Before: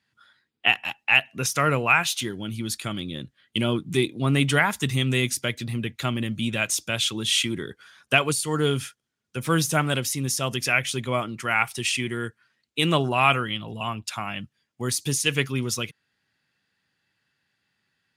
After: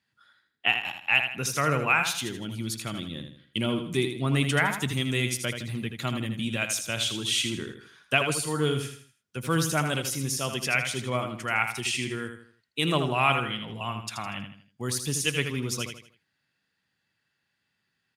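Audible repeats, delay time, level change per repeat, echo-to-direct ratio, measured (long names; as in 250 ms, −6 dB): 4, 80 ms, −8.5 dB, −7.0 dB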